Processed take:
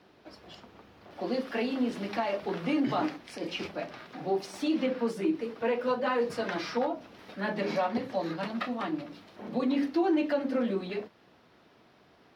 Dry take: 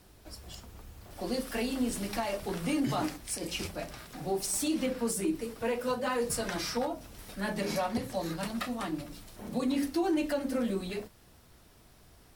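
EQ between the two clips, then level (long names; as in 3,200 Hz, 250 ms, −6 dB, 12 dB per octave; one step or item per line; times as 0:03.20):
high-pass filter 220 Hz 12 dB per octave
high-frequency loss of the air 290 metres
high-shelf EQ 4,300 Hz +5.5 dB
+4.0 dB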